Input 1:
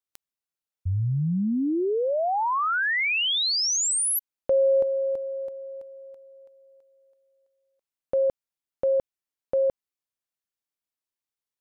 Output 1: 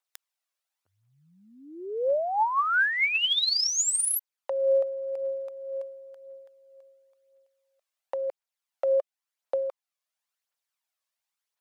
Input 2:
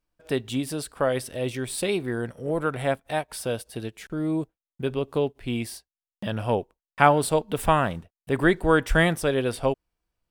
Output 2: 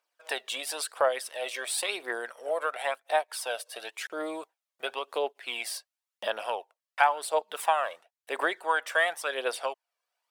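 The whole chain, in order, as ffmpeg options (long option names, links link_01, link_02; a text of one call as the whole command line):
ffmpeg -i in.wav -af "highpass=frequency=590:width=0.5412,highpass=frequency=590:width=1.3066,highshelf=frequency=9700:gain=-5,acompressor=threshold=-36dB:ratio=2:attack=29:release=657:detection=rms,aphaser=in_gain=1:out_gain=1:delay=1.9:decay=0.47:speed=0.95:type=triangular,volume=5.5dB" out.wav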